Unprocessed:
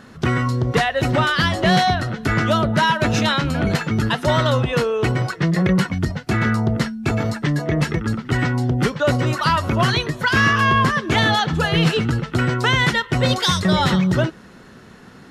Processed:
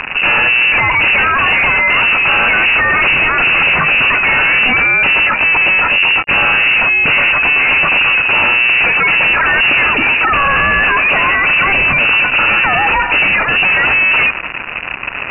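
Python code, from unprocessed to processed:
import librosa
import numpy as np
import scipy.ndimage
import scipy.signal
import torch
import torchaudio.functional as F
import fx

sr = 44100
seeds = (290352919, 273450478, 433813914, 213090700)

y = fx.fuzz(x, sr, gain_db=42.0, gate_db=-42.0)
y = fx.freq_invert(y, sr, carrier_hz=2800)
y = y * 10.0 ** (3.0 / 20.0)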